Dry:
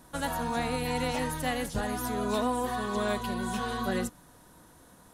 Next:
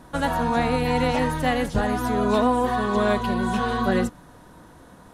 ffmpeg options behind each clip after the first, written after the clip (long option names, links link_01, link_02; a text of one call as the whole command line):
ffmpeg -i in.wav -af "lowpass=frequency=2500:poles=1,volume=9dB" out.wav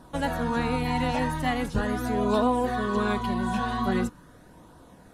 ffmpeg -i in.wav -af "flanger=delay=0.2:depth=1:regen=-51:speed=0.42:shape=triangular" out.wav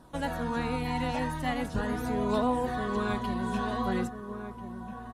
ffmpeg -i in.wav -filter_complex "[0:a]asplit=2[link_01][link_02];[link_02]adelay=1341,volume=-8dB,highshelf=frequency=4000:gain=-30.2[link_03];[link_01][link_03]amix=inputs=2:normalize=0,volume=-4.5dB" out.wav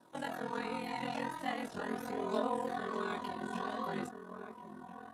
ffmpeg -i in.wav -af "highpass=270,aeval=exprs='val(0)*sin(2*PI*21*n/s)':channel_layout=same,flanger=delay=17.5:depth=5.1:speed=1.3" out.wav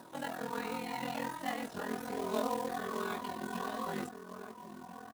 ffmpeg -i in.wav -af "acompressor=mode=upward:threshold=-45dB:ratio=2.5,aresample=32000,aresample=44100,acrusher=bits=3:mode=log:mix=0:aa=0.000001" out.wav